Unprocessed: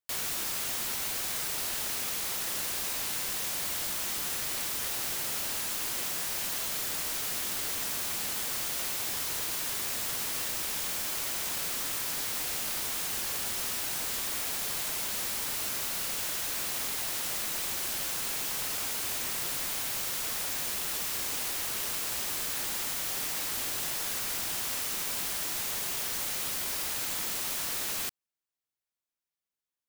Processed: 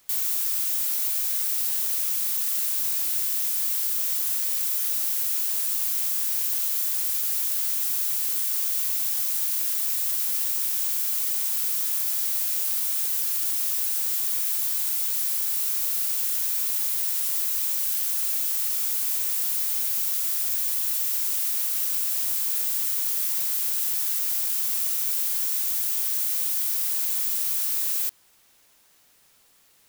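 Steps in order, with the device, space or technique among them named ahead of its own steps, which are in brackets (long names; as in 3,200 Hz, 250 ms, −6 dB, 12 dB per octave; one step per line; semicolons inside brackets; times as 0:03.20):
turntable without a phono preamp (RIAA equalisation recording; white noise bed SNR 34 dB)
level −8 dB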